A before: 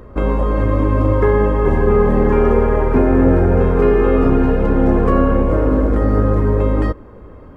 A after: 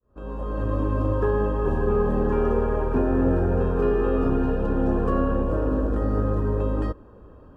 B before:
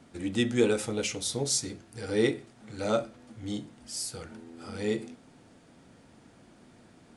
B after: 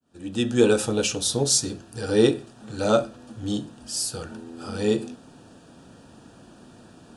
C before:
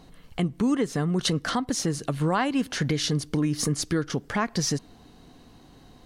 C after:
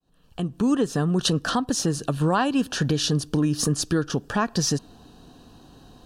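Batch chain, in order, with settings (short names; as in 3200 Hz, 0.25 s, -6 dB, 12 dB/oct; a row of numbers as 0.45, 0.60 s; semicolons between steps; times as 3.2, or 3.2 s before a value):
opening faded in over 0.73 s; Butterworth band-stop 2100 Hz, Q 3.6; added harmonics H 8 -44 dB, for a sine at -1 dBFS; match loudness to -24 LUFS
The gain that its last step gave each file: -9.0, +7.5, +2.5 dB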